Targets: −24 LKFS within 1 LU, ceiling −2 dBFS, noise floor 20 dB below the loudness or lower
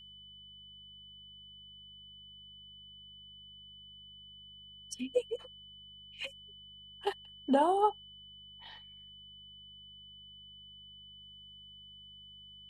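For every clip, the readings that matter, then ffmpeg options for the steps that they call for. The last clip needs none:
mains hum 50 Hz; hum harmonics up to 200 Hz; level of the hum −63 dBFS; interfering tone 3,000 Hz; level of the tone −51 dBFS; integrated loudness −34.5 LKFS; sample peak −15.0 dBFS; target loudness −24.0 LKFS
→ -af "bandreject=frequency=50:width_type=h:width=4,bandreject=frequency=100:width_type=h:width=4,bandreject=frequency=150:width_type=h:width=4,bandreject=frequency=200:width_type=h:width=4"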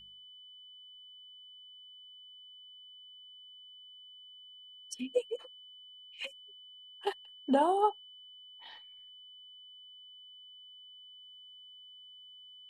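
mains hum none found; interfering tone 3,000 Hz; level of the tone −51 dBFS
→ -af "bandreject=frequency=3000:width=30"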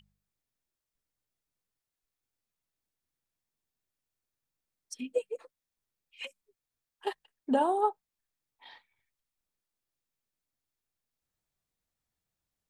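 interfering tone none found; integrated loudness −33.0 LKFS; sample peak −14.5 dBFS; target loudness −24.0 LKFS
→ -af "volume=9dB"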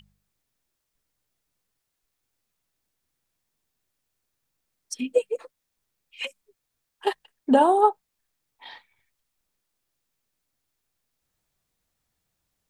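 integrated loudness −24.0 LKFS; sample peak −5.5 dBFS; background noise floor −81 dBFS

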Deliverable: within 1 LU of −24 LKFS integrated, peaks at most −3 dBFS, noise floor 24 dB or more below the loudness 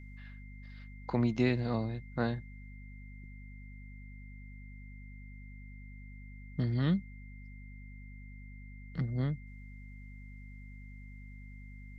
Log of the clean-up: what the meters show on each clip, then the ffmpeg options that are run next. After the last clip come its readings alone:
mains hum 50 Hz; hum harmonics up to 250 Hz; level of the hum −46 dBFS; interfering tone 2,100 Hz; level of the tone −57 dBFS; integrated loudness −33.5 LKFS; sample peak −16.0 dBFS; target loudness −24.0 LKFS
→ -af "bandreject=frequency=50:width_type=h:width=6,bandreject=frequency=100:width_type=h:width=6,bandreject=frequency=150:width_type=h:width=6,bandreject=frequency=200:width_type=h:width=6,bandreject=frequency=250:width_type=h:width=6"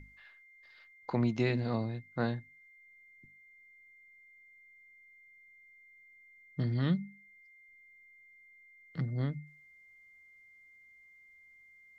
mains hum none found; interfering tone 2,100 Hz; level of the tone −57 dBFS
→ -af "bandreject=frequency=2100:width=30"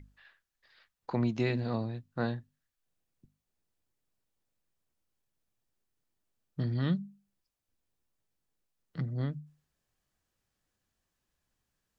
interfering tone none found; integrated loudness −34.0 LKFS; sample peak −17.5 dBFS; target loudness −24.0 LKFS
→ -af "volume=10dB"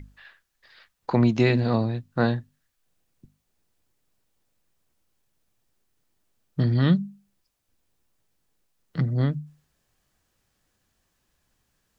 integrated loudness −24.5 LKFS; sample peak −7.5 dBFS; background noise floor −75 dBFS

